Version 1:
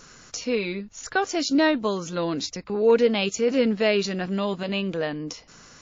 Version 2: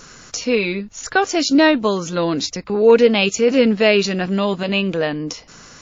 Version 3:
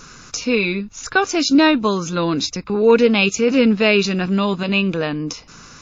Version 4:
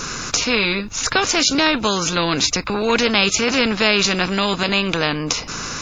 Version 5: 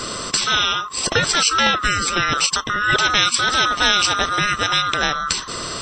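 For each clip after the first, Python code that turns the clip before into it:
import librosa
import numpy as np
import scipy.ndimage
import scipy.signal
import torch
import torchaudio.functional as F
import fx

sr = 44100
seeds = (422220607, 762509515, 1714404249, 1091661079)

y1 = fx.dynamic_eq(x, sr, hz=2600.0, q=6.2, threshold_db=-44.0, ratio=4.0, max_db=4)
y1 = F.gain(torch.from_numpy(y1), 7.0).numpy()
y2 = y1 + 0.38 * np.pad(y1, (int(0.8 * sr / 1000.0), 0))[:len(y1)]
y3 = fx.spectral_comp(y2, sr, ratio=2.0)
y4 = fx.band_swap(y3, sr, width_hz=1000)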